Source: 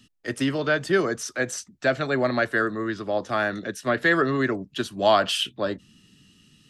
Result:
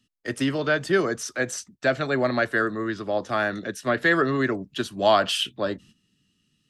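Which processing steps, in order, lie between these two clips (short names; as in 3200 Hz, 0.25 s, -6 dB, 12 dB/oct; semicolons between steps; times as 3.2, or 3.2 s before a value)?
gate -48 dBFS, range -13 dB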